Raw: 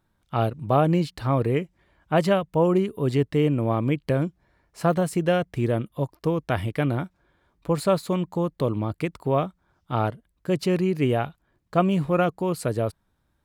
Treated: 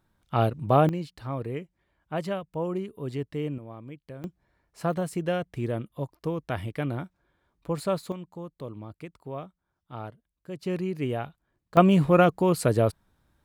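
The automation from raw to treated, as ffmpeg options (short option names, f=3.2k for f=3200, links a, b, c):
-af "asetnsamples=n=441:p=0,asendcmd='0.89 volume volume -10dB;3.58 volume volume -19dB;4.24 volume volume -6dB;8.12 volume volume -14dB;10.66 volume volume -7dB;11.77 volume volume 3dB',volume=0dB"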